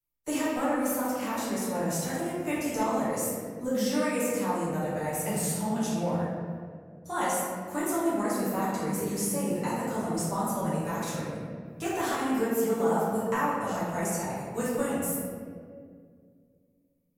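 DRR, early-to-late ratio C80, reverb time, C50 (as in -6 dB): -10.0 dB, 0.5 dB, 2.1 s, -2.0 dB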